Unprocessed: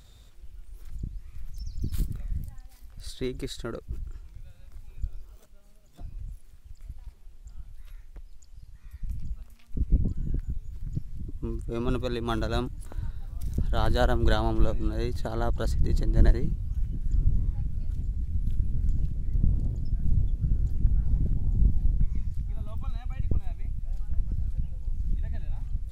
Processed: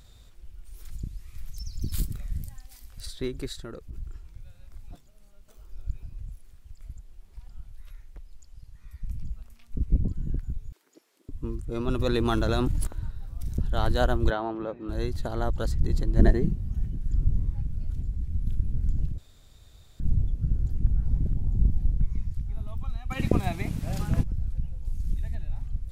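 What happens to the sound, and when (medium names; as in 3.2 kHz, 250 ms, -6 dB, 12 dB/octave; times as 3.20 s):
0.65–3.06 s: treble shelf 2.3 kHz +9 dB
3.58–3.98 s: compression 2.5:1, threshold -36 dBFS
4.91–6.03 s: reverse
6.97–7.49 s: reverse
10.72–11.29 s: steep high-pass 360 Hz
11.99–12.87 s: level flattener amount 100%
14.30–14.89 s: band-pass 280–2100 Hz
16.19–16.89 s: small resonant body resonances 210/380/670/1800 Hz, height 8 dB, ringing for 25 ms
19.18–20.00 s: room tone
23.10–24.22 s: spectral peaks clipped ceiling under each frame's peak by 28 dB
24.85–25.35 s: treble shelf 4.1 kHz +11.5 dB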